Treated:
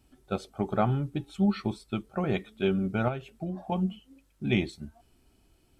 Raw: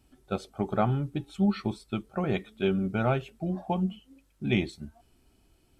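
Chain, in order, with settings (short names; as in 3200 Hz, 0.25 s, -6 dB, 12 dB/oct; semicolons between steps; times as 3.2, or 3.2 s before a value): 3.08–3.72 compressor 4:1, threshold -31 dBFS, peak gain reduction 8.5 dB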